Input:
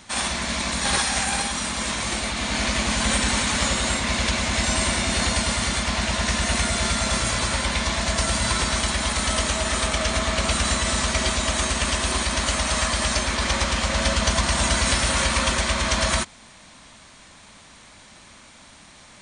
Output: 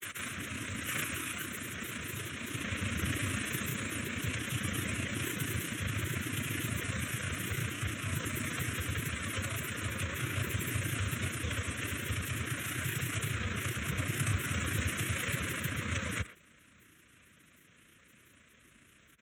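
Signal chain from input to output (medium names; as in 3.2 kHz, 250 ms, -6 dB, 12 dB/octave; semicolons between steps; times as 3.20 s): granulator 61 ms, grains 29 per s, pitch spread up and down by 7 st; formant shift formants +4 st; frequency shift +44 Hz; static phaser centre 2 kHz, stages 4; speakerphone echo 120 ms, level -15 dB; trim -8.5 dB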